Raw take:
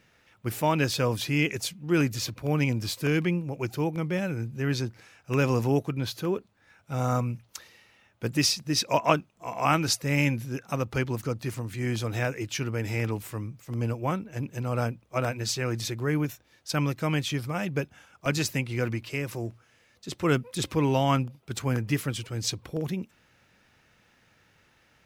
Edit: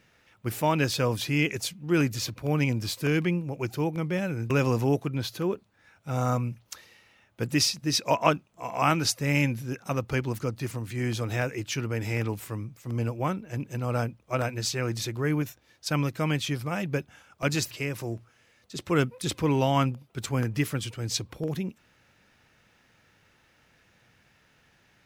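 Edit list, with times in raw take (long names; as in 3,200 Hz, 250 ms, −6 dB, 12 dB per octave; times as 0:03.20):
0:04.50–0:05.33: remove
0:18.54–0:19.04: remove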